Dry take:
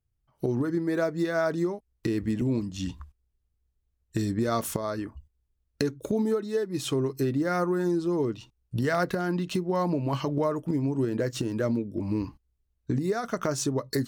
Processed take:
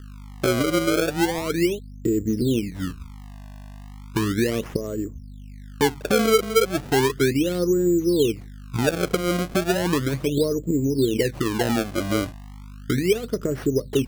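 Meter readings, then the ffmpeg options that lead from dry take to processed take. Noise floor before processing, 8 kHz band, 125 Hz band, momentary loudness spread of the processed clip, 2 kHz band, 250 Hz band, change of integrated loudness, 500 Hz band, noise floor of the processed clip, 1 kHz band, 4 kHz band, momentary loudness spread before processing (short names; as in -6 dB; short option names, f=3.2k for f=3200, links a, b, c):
-76 dBFS, +8.0 dB, +3.5 dB, 22 LU, +7.5 dB, +5.0 dB, +5.5 dB, +6.5 dB, -40 dBFS, +4.0 dB, +10.5 dB, 7 LU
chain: -af "aeval=exprs='val(0)+0.00891*(sin(2*PI*50*n/s)+sin(2*PI*2*50*n/s)/2+sin(2*PI*3*50*n/s)/3+sin(2*PI*4*50*n/s)/4+sin(2*PI*5*50*n/s)/5)':c=same,lowshelf=f=600:t=q:w=3:g=9.5,acrusher=samples=28:mix=1:aa=0.000001:lfo=1:lforange=44.8:lforate=0.35,volume=-7dB"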